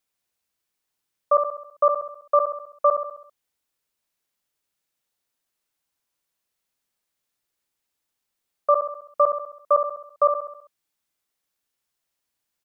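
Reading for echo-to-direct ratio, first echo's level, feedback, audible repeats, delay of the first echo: -5.5 dB, -7.0 dB, 52%, 5, 66 ms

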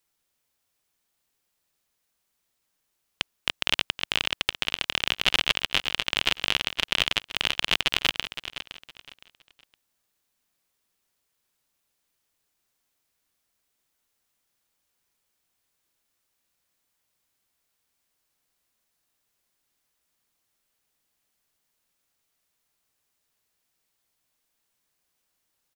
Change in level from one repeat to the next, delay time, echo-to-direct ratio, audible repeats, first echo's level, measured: -11.5 dB, 514 ms, -11.5 dB, 2, -12.0 dB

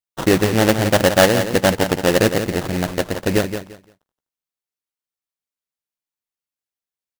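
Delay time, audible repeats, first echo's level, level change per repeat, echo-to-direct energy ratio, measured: 172 ms, 2, -9.0 dB, -13.5 dB, -9.0 dB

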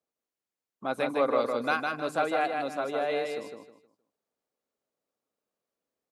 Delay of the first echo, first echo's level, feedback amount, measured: 156 ms, -4.0 dB, 29%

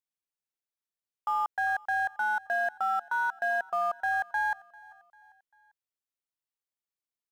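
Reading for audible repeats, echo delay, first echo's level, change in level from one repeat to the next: 2, 395 ms, -23.5 dB, -6.0 dB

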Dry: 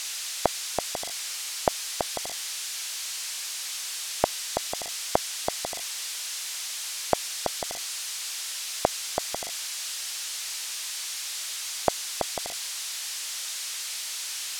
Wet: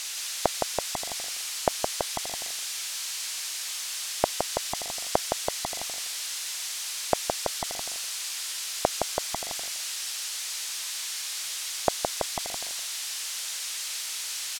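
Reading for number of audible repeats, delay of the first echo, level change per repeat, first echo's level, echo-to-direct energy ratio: 2, 166 ms, -13.0 dB, -5.0 dB, -5.0 dB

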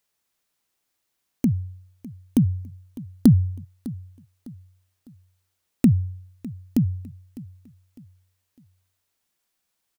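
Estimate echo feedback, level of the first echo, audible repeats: 37%, -18.5 dB, 2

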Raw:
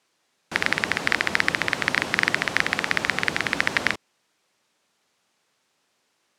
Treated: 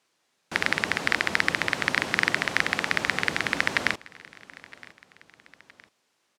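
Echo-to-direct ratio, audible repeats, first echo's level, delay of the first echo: -21.0 dB, 2, -22.0 dB, 966 ms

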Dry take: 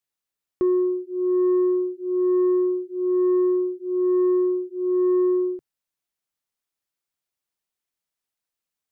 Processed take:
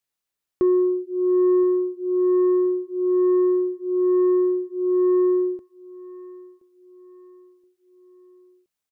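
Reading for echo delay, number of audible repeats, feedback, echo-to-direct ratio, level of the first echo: 1023 ms, 3, 42%, -18.0 dB, -19.0 dB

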